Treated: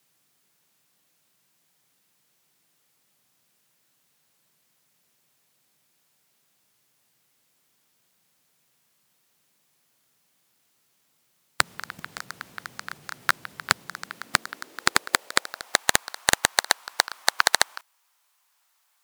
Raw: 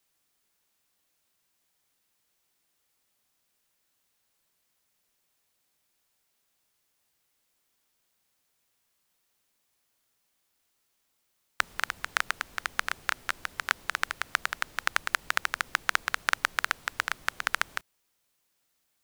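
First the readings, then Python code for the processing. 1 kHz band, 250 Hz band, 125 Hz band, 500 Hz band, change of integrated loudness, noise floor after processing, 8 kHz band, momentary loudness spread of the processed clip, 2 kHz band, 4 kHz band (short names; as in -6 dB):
+4.0 dB, +12.0 dB, +10.5 dB, +10.5 dB, +5.0 dB, -69 dBFS, +12.0 dB, 17 LU, +2.5 dB, +8.5 dB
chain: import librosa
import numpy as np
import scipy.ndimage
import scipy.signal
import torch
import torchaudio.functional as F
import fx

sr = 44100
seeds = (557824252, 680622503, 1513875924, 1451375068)

y = fx.filter_sweep_highpass(x, sr, from_hz=140.0, to_hz=950.0, start_s=13.76, end_s=15.88, q=2.2)
y = fx.fold_sine(y, sr, drive_db=13, ceiling_db=-1.5)
y = fx.level_steps(y, sr, step_db=17)
y = y * 10.0 ** (-1.0 / 20.0)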